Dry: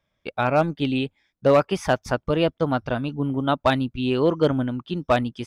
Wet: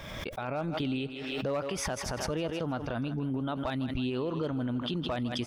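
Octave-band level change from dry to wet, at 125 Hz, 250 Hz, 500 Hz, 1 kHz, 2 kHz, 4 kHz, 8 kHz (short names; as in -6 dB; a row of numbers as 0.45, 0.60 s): -8.0, -8.0, -12.5, -12.5, -10.0, -5.0, +3.5 dB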